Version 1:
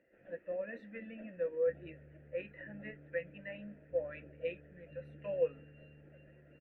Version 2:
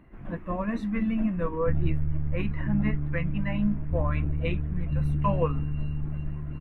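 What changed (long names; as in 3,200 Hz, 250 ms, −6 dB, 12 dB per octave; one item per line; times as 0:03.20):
speech: add parametric band 1,400 Hz −6.5 dB 0.3 octaves
master: remove formant filter e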